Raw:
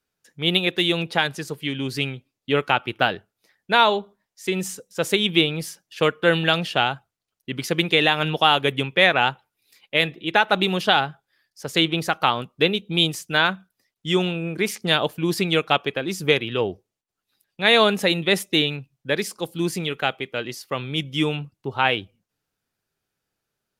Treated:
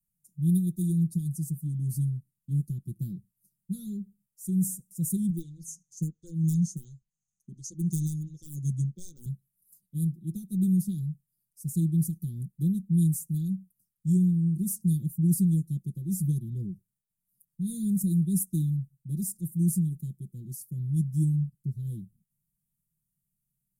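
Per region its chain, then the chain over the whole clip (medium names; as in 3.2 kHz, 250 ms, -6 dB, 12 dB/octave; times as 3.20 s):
5.30–9.26 s: resonant low-pass 6.4 kHz, resonance Q 11 + hard clipper -6.5 dBFS + lamp-driven phase shifter 1.4 Hz
whole clip: inverse Chebyshev band-stop 650–2800 Hz, stop band 70 dB; comb 5.7 ms, depth 89%; trim +1.5 dB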